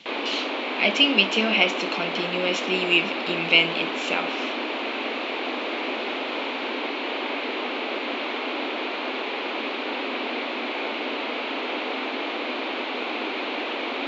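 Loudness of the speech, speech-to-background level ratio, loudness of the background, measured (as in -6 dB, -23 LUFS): -22.5 LUFS, 5.5 dB, -28.0 LUFS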